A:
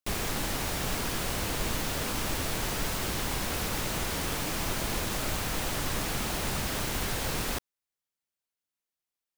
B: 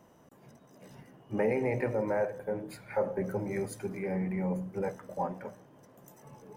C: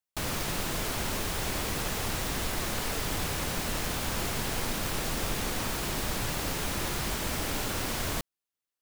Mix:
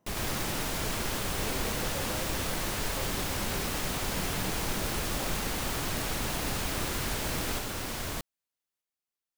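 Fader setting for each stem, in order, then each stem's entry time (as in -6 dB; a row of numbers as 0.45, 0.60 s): -3.5, -12.5, -3.5 dB; 0.00, 0.00, 0.00 s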